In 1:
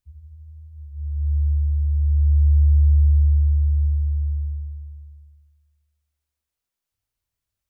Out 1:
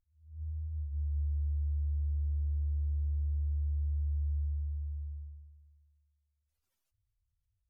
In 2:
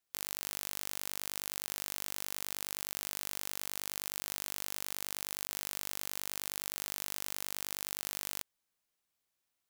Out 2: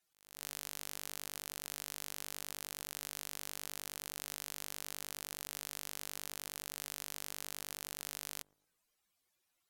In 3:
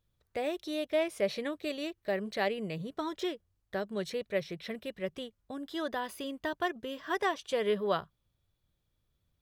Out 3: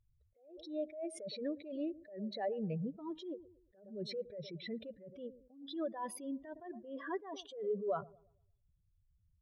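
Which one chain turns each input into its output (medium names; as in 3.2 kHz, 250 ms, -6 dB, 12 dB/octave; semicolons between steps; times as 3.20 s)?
spectral contrast enhancement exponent 2.5; low-pass that closes with the level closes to 2.4 kHz, closed at -16 dBFS; peak limiter -20.5 dBFS; compression 2.5:1, threshold -40 dBFS; feedback echo behind a low-pass 114 ms, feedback 35%, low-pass 610 Hz, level -18 dB; attacks held to a fixed rise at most 110 dB/s; trim +4 dB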